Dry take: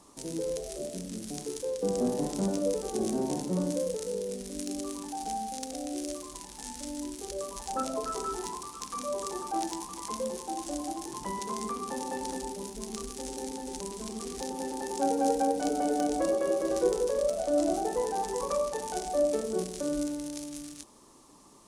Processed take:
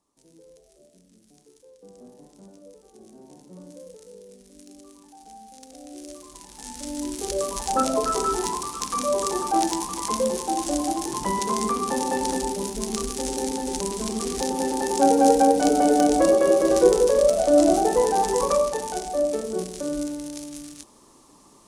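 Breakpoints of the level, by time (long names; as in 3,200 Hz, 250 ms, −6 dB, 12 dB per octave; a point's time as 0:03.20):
0:03.07 −19 dB
0:03.89 −12 dB
0:05.27 −12 dB
0:06.36 −1.5 dB
0:07.28 +10 dB
0:18.43 +10 dB
0:19.09 +3 dB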